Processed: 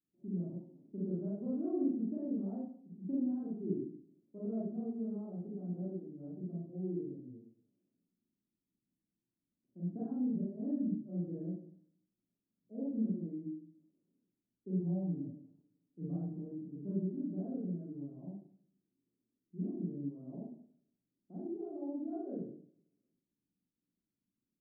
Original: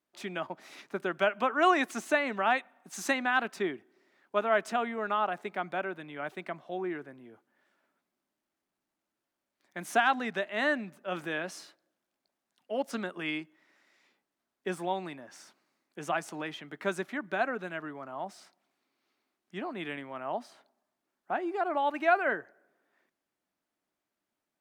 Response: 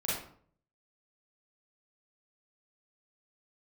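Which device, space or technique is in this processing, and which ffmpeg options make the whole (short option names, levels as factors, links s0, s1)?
next room: -filter_complex "[0:a]asettb=1/sr,asplit=3[s0][s1][s2];[s0]atrim=end=14.804[s3];[s1]atrim=start=14.8:end=16.23,asetpts=PTS-STARTPTS,afade=t=in:d=0.004:c=qsin,afade=t=out:st=1.426:d=0.004:c=qsin,aecho=1:1:6.8:0.71,atrim=end_sample=63063[s4];[s2]atrim=start=16.226[s5];[s3][s4]acrossfade=d=0.004:c1=hsin:c2=qsin[s6];[s6][s5]acrossfade=d=0.004:c1=qsin:c2=hsin,lowpass=f=300:w=0.5412,lowpass=f=300:w=1.3066[s7];[1:a]atrim=start_sample=2205[s8];[s7][s8]afir=irnorm=-1:irlink=0,volume=0.75"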